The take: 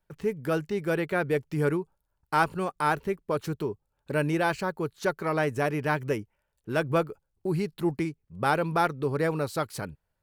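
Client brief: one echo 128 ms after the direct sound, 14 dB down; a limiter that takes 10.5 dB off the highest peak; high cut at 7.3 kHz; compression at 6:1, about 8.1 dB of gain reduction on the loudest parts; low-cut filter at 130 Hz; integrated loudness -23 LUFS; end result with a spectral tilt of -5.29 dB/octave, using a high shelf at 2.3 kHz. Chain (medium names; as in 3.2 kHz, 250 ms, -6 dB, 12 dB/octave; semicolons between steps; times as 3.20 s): high-pass 130 Hz; low-pass 7.3 kHz; treble shelf 2.3 kHz +8.5 dB; compression 6:1, threshold -26 dBFS; peak limiter -23 dBFS; delay 128 ms -14 dB; trim +12.5 dB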